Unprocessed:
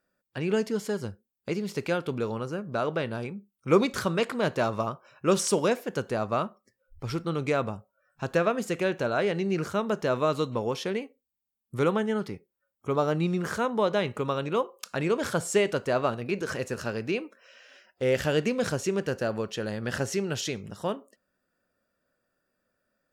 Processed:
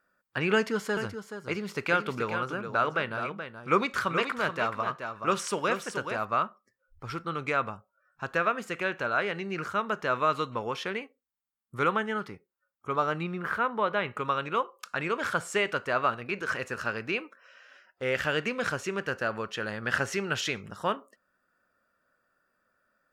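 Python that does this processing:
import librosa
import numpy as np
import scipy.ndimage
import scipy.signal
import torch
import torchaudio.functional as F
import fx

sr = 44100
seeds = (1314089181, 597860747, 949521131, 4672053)

y = fx.echo_single(x, sr, ms=427, db=-7.5, at=(0.54, 6.25))
y = fx.peak_eq(y, sr, hz=6800.0, db=-13.5, octaves=1.2, at=(13.23, 14.17))
y = fx.dynamic_eq(y, sr, hz=2500.0, q=1.1, threshold_db=-46.0, ratio=4.0, max_db=7)
y = fx.rider(y, sr, range_db=10, speed_s=2.0)
y = fx.peak_eq(y, sr, hz=1300.0, db=11.5, octaves=1.2)
y = F.gain(torch.from_numpy(y), -7.5).numpy()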